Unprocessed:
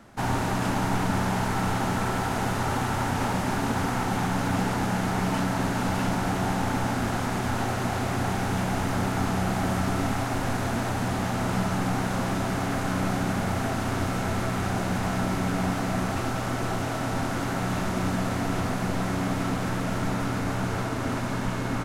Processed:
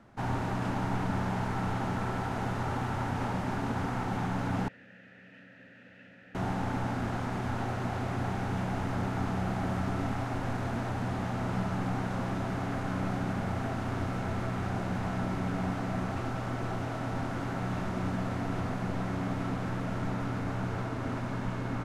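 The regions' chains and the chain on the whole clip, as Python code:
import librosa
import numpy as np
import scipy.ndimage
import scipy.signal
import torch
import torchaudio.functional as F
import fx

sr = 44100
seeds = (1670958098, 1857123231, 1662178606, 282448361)

y = fx.chain(x, sr, fx.vowel_filter(vowel='e'),
    fx.band_shelf(hz=560.0, db=-13.5, octaves=1.7), at=(4.68, 6.35))
y = fx.lowpass(y, sr, hz=2600.0, slope=6)
y = fx.peak_eq(y, sr, hz=120.0, db=2.5, octaves=0.77)
y = y * librosa.db_to_amplitude(-6.0)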